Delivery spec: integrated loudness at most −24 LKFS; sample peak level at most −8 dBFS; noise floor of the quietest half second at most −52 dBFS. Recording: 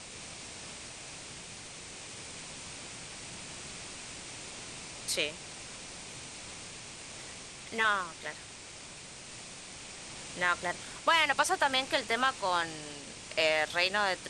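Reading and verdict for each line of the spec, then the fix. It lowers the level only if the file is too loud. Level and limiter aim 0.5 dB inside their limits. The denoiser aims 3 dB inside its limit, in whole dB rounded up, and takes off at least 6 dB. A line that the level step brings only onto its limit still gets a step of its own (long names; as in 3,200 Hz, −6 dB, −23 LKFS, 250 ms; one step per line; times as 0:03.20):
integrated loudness −33.5 LKFS: in spec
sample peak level −13.0 dBFS: in spec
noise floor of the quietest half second −47 dBFS: out of spec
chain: broadband denoise 8 dB, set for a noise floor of −47 dBFS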